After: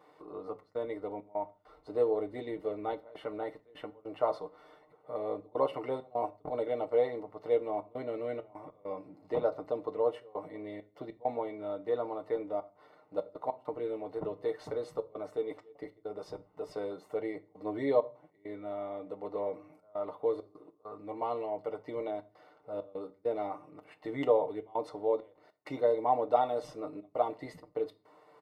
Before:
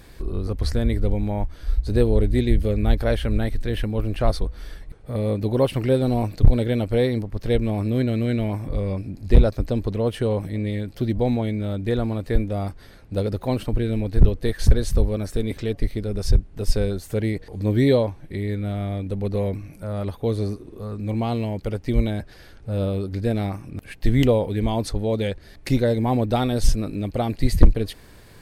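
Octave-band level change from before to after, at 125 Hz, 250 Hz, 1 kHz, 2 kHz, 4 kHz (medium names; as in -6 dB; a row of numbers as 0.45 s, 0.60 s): -31.5 dB, -18.0 dB, -2.5 dB, -14.5 dB, under -15 dB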